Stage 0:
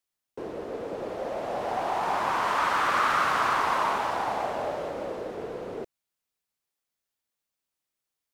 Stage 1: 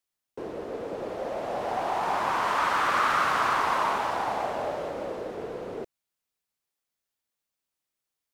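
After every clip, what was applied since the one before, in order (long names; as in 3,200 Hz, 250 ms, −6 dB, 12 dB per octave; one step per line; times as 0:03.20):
no processing that can be heard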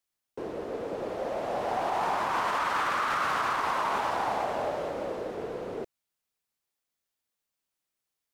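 brickwall limiter −19.5 dBFS, peak gain reduction 6.5 dB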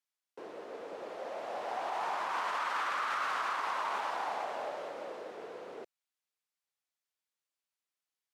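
meter weighting curve A
level −6 dB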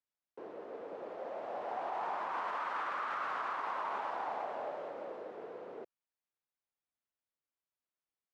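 low-pass filter 1,100 Hz 6 dB per octave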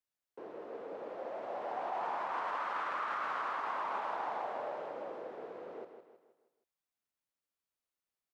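repeating echo 159 ms, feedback 44%, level −8.5 dB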